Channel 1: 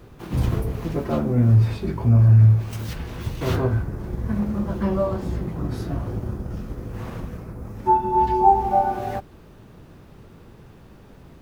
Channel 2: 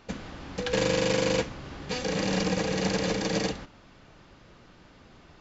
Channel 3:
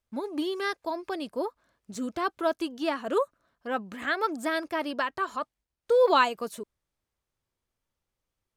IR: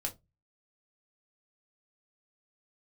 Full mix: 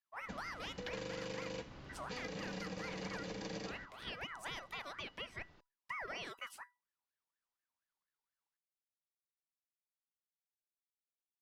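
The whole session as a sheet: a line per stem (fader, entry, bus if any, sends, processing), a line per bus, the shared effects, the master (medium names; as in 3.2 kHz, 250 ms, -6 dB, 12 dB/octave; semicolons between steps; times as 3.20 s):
mute
-4.0 dB, 0.20 s, no bus, no send, none
-5.0 dB, 0.00 s, bus A, no send, octave divider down 1 oct, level -5 dB; ring modulator with a swept carrier 1.3 kHz, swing 35%, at 4.2 Hz
bus A: 0.0 dB, peaking EQ 6.1 kHz +5.5 dB 2.7 oct; peak limiter -23.5 dBFS, peak gain reduction 10 dB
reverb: none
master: peaking EQ 7.1 kHz -3.5 dB 0.46 oct; feedback comb 980 Hz, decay 0.26 s, mix 60%; compression, threshold -40 dBFS, peak gain reduction 8 dB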